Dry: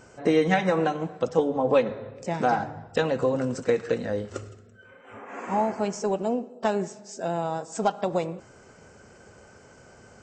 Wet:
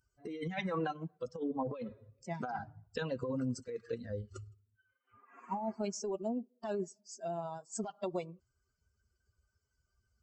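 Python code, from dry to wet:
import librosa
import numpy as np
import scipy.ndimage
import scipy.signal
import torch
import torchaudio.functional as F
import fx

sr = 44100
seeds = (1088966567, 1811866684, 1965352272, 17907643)

y = fx.bin_expand(x, sr, power=2.0)
y = fx.over_compress(y, sr, threshold_db=-31.0, ratio=-1.0)
y = F.gain(torch.from_numpy(y), -5.0).numpy()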